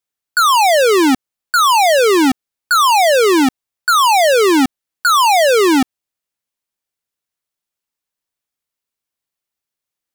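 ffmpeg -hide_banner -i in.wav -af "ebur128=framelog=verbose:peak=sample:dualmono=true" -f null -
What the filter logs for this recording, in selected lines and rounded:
Integrated loudness:
  I:          -9.2 LUFS
  Threshold: -19.3 LUFS
Loudness range:
  LRA:         6.5 LU
  Threshold: -30.4 LUFS
  LRA low:   -15.4 LUFS
  LRA high:   -8.9 LUFS
Sample peak:
  Peak:      -10.7 dBFS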